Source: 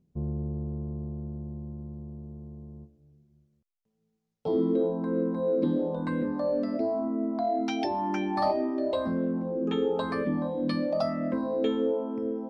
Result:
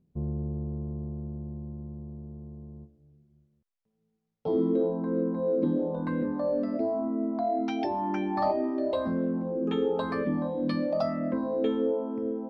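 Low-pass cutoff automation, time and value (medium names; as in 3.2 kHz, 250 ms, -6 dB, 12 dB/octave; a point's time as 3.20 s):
low-pass 6 dB/octave
2.8 kHz
from 5.01 s 1.5 kHz
from 5.95 s 2.2 kHz
from 8.64 s 4.1 kHz
from 11.19 s 2.3 kHz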